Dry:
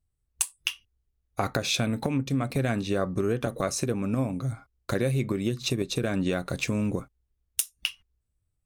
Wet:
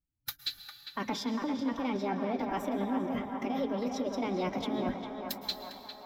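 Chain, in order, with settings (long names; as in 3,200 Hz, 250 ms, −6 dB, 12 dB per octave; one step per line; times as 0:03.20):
moving average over 7 samples
noise gate −58 dBFS, range −18 dB
parametric band 150 Hz +11 dB 0.48 octaves
reversed playback
downward compressor 16 to 1, threshold −33 dBFS, peak gain reduction 17.5 dB
reversed playback
change of speed 1.43×
mains-hum notches 50/100/150/200 Hz
phase-vocoder pitch shift with formants kept +6 semitones
on a send: feedback echo with a band-pass in the loop 402 ms, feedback 74%, band-pass 1,100 Hz, level −4 dB
on the sum: dense smooth reverb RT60 3.5 s, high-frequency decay 0.65×, pre-delay 100 ms, DRR 10 dB
level +4.5 dB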